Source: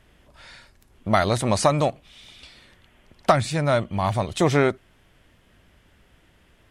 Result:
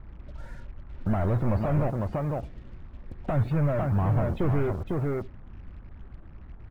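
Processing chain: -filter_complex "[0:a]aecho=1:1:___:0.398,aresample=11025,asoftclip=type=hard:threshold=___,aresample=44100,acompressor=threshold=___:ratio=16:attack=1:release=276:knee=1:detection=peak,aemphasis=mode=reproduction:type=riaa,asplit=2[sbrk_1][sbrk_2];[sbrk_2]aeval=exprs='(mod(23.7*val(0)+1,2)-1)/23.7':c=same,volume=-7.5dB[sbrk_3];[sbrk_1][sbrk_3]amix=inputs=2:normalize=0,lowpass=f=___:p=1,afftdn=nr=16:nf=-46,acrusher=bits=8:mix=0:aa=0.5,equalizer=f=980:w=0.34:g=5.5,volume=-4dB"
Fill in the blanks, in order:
502, -22dB, -27dB, 1300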